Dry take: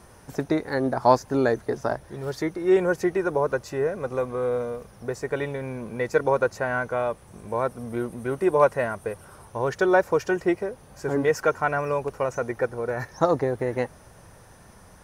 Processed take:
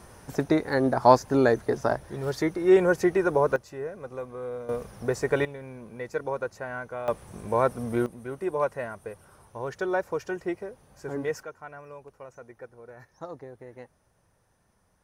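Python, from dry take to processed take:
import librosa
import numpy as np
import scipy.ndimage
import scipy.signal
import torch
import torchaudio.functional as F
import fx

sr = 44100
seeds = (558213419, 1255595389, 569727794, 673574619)

y = fx.gain(x, sr, db=fx.steps((0.0, 1.0), (3.56, -9.5), (4.69, 3.0), (5.45, -9.0), (7.08, 2.5), (8.06, -8.0), (11.43, -18.5)))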